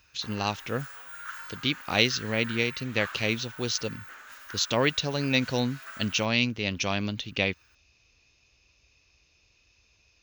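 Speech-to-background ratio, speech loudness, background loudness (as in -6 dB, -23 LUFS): 14.0 dB, -28.0 LUFS, -42.0 LUFS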